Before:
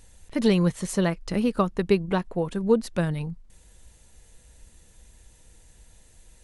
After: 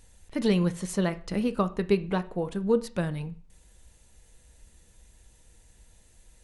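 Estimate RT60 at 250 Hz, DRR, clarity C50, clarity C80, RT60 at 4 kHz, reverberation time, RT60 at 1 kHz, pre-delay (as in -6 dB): 0.45 s, 11.5 dB, 18.5 dB, 22.5 dB, 0.40 s, 0.45 s, 0.45 s, 5 ms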